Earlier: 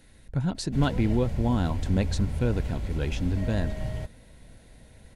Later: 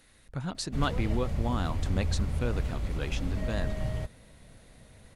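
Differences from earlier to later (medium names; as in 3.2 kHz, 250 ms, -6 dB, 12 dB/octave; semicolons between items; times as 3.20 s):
speech: add bass shelf 480 Hz -9 dB; master: remove Butterworth band-stop 1.2 kHz, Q 6.5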